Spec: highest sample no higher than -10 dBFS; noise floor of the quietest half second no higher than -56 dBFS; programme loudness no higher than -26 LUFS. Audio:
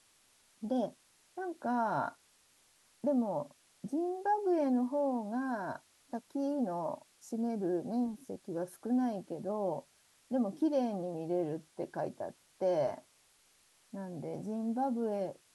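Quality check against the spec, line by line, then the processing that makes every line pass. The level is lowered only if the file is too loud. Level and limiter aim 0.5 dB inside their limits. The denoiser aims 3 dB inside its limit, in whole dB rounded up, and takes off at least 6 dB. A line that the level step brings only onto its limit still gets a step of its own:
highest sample -21.0 dBFS: OK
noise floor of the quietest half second -68 dBFS: OK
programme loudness -35.5 LUFS: OK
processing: none

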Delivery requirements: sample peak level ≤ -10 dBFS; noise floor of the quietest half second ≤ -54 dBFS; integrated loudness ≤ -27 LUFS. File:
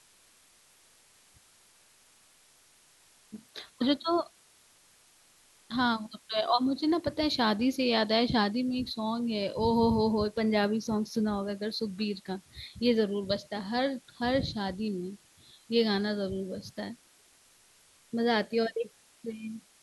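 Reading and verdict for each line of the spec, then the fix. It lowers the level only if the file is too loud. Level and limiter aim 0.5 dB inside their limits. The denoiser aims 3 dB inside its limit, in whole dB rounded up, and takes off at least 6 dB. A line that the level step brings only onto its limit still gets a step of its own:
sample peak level -12.5 dBFS: OK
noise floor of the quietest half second -62 dBFS: OK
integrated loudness -30.0 LUFS: OK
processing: none

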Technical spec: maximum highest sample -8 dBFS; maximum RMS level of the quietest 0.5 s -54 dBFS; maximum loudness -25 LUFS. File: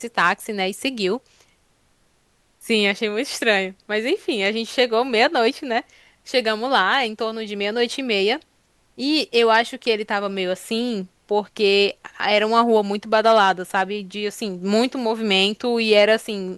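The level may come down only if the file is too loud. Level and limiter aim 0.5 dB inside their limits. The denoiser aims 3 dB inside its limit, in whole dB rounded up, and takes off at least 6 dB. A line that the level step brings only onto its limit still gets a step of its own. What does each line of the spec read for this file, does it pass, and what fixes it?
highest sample -3.5 dBFS: fail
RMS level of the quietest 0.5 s -62 dBFS: OK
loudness -20.0 LUFS: fail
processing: gain -5.5 dB

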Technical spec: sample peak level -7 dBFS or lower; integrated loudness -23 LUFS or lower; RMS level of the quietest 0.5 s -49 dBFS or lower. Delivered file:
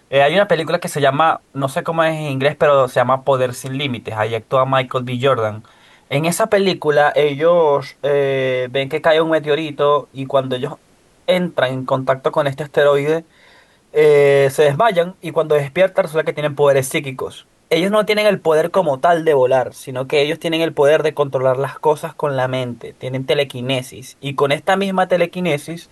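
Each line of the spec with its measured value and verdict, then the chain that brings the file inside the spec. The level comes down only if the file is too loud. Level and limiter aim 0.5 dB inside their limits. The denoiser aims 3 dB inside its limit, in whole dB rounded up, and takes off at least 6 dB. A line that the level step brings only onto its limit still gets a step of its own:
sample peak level -3.5 dBFS: fail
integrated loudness -16.5 LUFS: fail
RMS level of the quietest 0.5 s -53 dBFS: OK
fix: gain -7 dB

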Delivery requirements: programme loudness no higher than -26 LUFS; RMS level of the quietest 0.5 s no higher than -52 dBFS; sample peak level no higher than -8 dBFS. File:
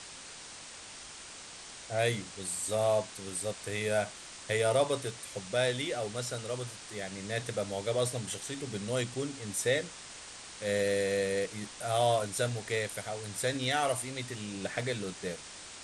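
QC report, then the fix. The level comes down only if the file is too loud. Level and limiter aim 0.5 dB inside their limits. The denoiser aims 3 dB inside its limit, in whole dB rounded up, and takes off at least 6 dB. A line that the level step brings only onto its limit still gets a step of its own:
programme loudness -33.0 LUFS: OK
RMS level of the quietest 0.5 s -47 dBFS: fail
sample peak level -16.0 dBFS: OK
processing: denoiser 8 dB, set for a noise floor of -47 dBFS

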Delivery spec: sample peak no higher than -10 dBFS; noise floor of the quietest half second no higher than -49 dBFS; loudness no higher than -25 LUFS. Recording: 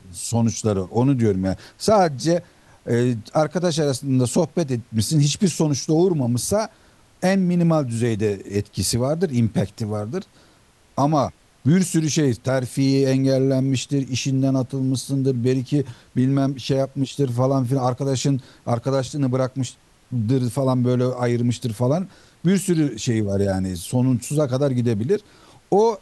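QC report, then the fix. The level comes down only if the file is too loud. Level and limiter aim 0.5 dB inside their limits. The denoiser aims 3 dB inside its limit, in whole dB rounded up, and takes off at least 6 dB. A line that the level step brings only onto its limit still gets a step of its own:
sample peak -6.0 dBFS: fail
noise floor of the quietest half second -55 dBFS: OK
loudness -21.5 LUFS: fail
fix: gain -4 dB; limiter -10.5 dBFS

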